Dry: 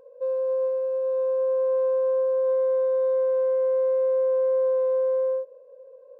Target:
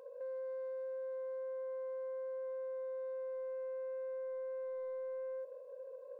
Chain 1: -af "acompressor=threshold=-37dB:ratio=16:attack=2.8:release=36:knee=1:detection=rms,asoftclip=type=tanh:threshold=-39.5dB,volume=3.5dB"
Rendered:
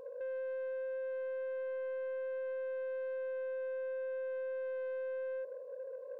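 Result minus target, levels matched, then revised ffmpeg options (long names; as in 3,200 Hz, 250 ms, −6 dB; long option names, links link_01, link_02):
1,000 Hz band −4.0 dB
-af "acompressor=threshold=-37dB:ratio=16:attack=2.8:release=36:knee=1:detection=rms,highpass=frequency=760:poles=1,asoftclip=type=tanh:threshold=-39.5dB,volume=3.5dB"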